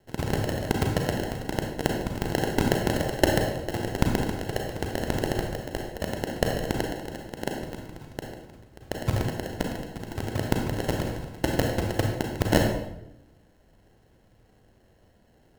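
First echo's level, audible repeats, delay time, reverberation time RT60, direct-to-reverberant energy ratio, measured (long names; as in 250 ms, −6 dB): no echo audible, no echo audible, no echo audible, 0.85 s, 1.0 dB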